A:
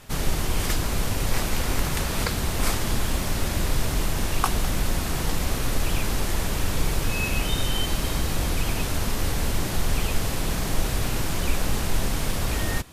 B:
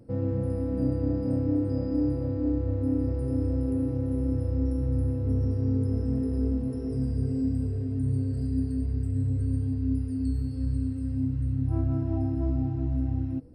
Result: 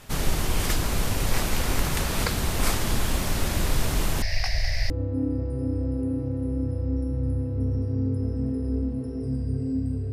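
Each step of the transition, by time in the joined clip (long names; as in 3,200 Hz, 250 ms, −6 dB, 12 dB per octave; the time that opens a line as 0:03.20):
A
0:04.22–0:04.90: drawn EQ curve 110 Hz 0 dB, 200 Hz −28 dB, 390 Hz −25 dB, 650 Hz 0 dB, 940 Hz −17 dB, 1,300 Hz −22 dB, 1,900 Hz +9 dB, 3,300 Hz −11 dB, 5,000 Hz +10 dB, 7,300 Hz −18 dB
0:04.90: continue with B from 0:02.59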